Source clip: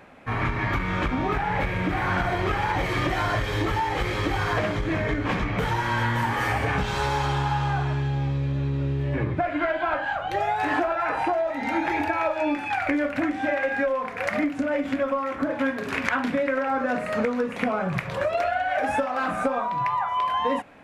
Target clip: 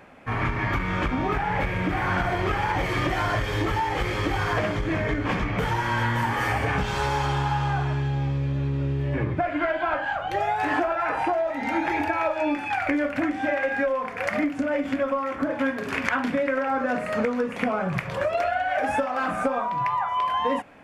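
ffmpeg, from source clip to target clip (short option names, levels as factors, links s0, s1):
-af "bandreject=f=3900:w=14"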